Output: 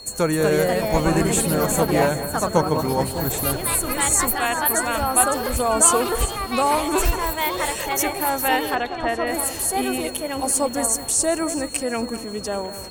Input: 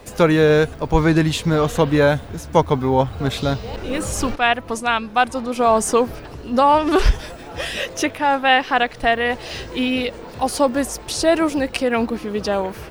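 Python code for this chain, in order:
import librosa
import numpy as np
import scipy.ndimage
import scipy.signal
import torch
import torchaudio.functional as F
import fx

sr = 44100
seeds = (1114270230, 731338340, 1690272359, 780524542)

p1 = fx.high_shelf_res(x, sr, hz=5900.0, db=11.0, q=3.0)
p2 = fx.echo_pitch(p1, sr, ms=273, semitones=3, count=3, db_per_echo=-3.0)
p3 = p2 + fx.echo_alternate(p2, sr, ms=198, hz=2500.0, feedback_pct=64, wet_db=-12, dry=0)
p4 = p3 + 10.0 ** (-32.0 / 20.0) * np.sin(2.0 * np.pi * 4300.0 * np.arange(len(p3)) / sr)
p5 = fx.air_absorb(p4, sr, metres=140.0, at=(8.75, 9.27))
y = p5 * 10.0 ** (-6.0 / 20.0)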